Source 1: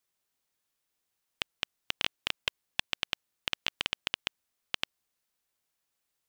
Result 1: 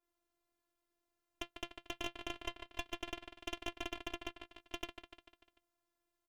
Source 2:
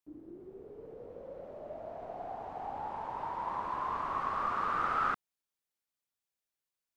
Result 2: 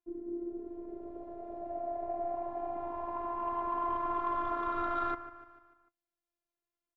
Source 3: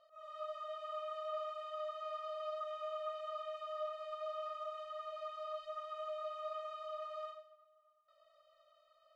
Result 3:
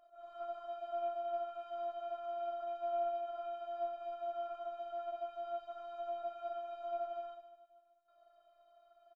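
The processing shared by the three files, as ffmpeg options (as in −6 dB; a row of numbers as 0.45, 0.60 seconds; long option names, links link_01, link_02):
-af "tiltshelf=frequency=1400:gain=9.5,flanger=delay=5.3:depth=2.2:regen=62:speed=0.25:shape=sinusoidal,aecho=1:1:148|296|444|592|740:0.2|0.102|0.0519|0.0265|0.0135,asoftclip=type=tanh:threshold=-25dB,afftfilt=real='hypot(re,im)*cos(PI*b)':imag='0':win_size=512:overlap=0.75,adynamicequalizer=threshold=0.00112:dfrequency=3000:dqfactor=0.7:tfrequency=3000:tqfactor=0.7:attack=5:release=100:ratio=0.375:range=2.5:mode=cutabove:tftype=highshelf,volume=6.5dB"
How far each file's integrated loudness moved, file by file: −10.5, −0.5, +2.0 LU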